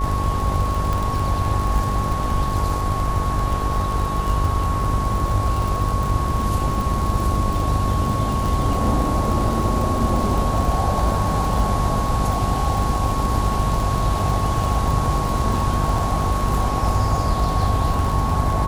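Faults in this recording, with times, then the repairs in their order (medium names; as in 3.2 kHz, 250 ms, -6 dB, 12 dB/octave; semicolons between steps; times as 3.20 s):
buzz 50 Hz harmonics 17 -25 dBFS
crackle 55 per s -23 dBFS
whine 1.1 kHz -25 dBFS
0.93 s: pop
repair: de-click; band-stop 1.1 kHz, Q 30; de-hum 50 Hz, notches 17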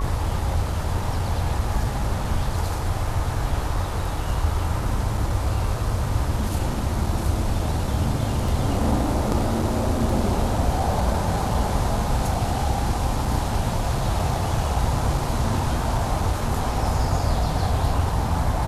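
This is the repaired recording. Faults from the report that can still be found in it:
nothing left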